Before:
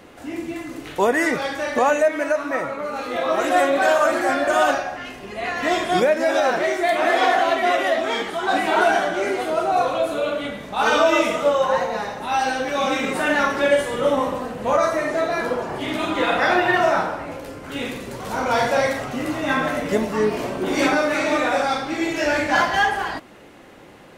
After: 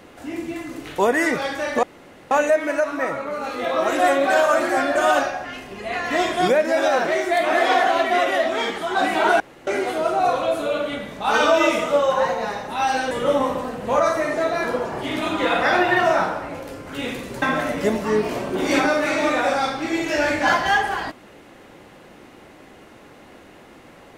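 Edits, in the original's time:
1.83 s: insert room tone 0.48 s
8.92–9.19 s: room tone
12.63–13.88 s: delete
18.19–19.50 s: delete

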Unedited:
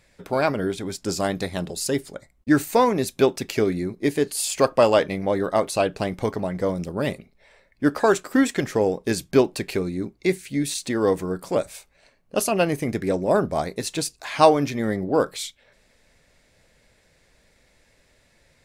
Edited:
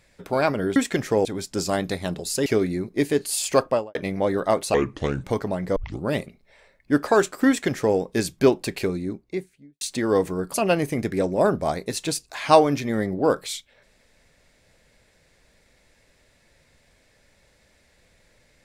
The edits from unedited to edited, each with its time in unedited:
1.97–3.52 s: delete
4.64–5.01 s: studio fade out
5.80–6.16 s: speed 72%
6.68 s: tape start 0.28 s
8.40–8.89 s: copy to 0.76 s
9.77–10.73 s: studio fade out
11.46–12.44 s: delete

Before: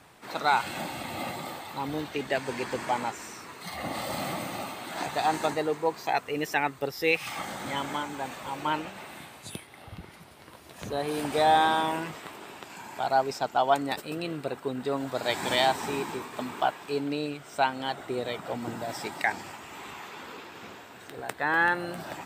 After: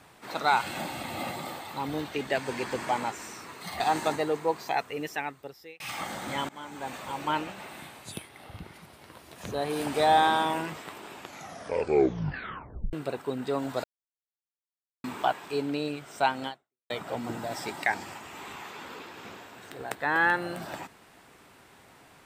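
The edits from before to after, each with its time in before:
3.80–5.18 s: delete
5.95–7.18 s: fade out
7.87–8.33 s: fade in, from -22 dB
12.52 s: tape stop 1.79 s
15.22–16.42 s: mute
17.85–18.28 s: fade out exponential

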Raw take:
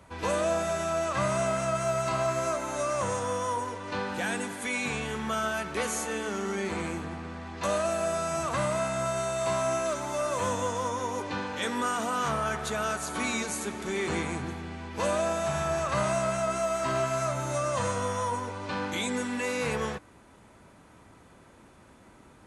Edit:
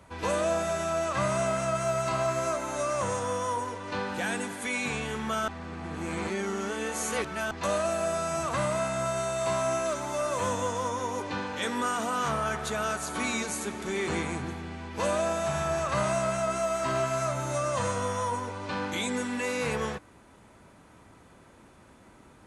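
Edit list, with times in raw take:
5.48–7.51 s: reverse

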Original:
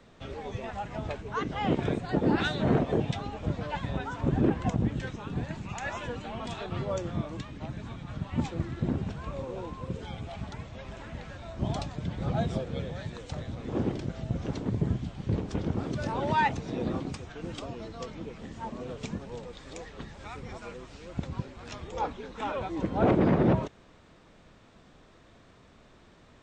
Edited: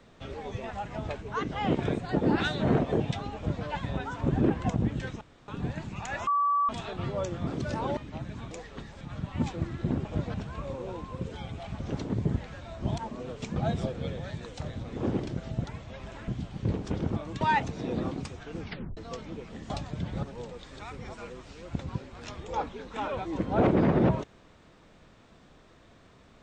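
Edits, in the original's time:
3.36–3.65 s: copy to 9.03 s
5.21 s: insert room tone 0.27 s
6.00–6.42 s: bleep 1.15 kHz -22 dBFS
7.20–7.45 s: swap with 15.80–16.30 s
10.49–11.13 s: swap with 14.36–14.92 s
11.75–12.28 s: swap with 18.59–19.17 s
17.46 s: tape stop 0.40 s
19.73–20.23 s: move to 7.99 s

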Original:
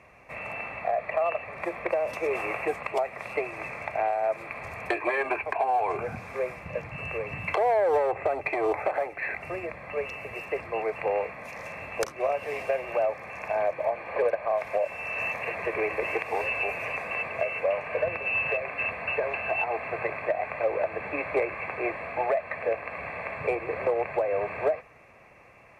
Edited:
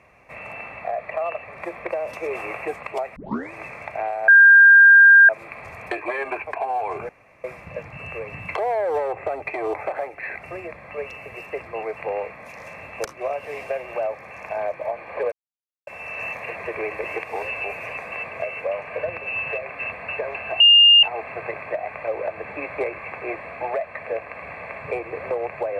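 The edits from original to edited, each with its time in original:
3.16 s: tape start 0.36 s
4.28 s: add tone 1.6 kHz -6.5 dBFS 1.01 s
6.08–6.43 s: room tone
14.31–14.86 s: mute
19.59 s: add tone 2.82 kHz -8 dBFS 0.43 s

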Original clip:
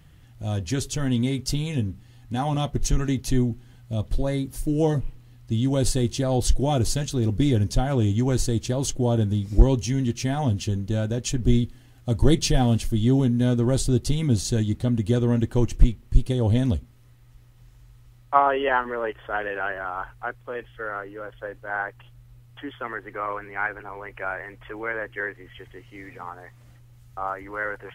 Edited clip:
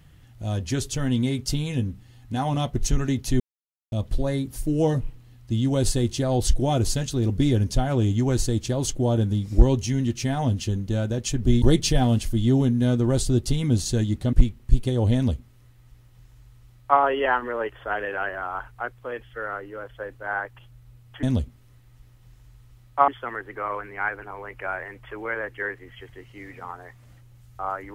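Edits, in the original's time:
3.40–3.92 s: mute
11.62–12.21 s: delete
14.92–15.76 s: delete
16.58–18.43 s: copy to 22.66 s

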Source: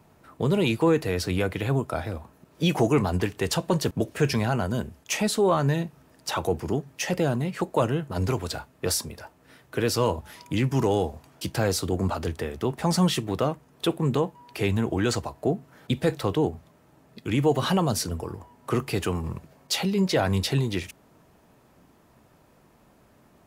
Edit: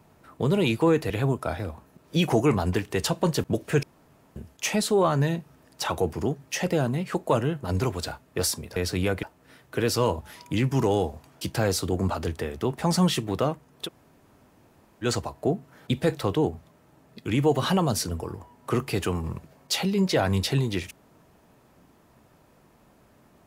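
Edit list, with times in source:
1.10–1.57 s: move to 9.23 s
4.30–4.83 s: room tone
13.86–15.04 s: room tone, crossfade 0.06 s

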